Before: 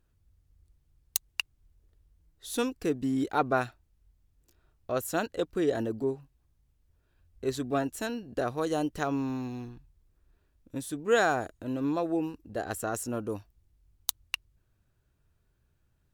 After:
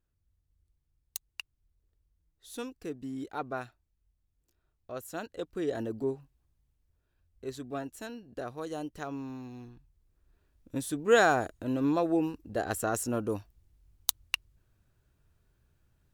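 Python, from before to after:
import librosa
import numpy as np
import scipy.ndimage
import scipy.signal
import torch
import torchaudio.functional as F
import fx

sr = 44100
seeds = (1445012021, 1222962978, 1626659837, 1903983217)

y = fx.gain(x, sr, db=fx.line((5.08, -9.5), (6.09, -1.5), (7.5, -8.0), (9.44, -8.0), (10.76, 2.0)))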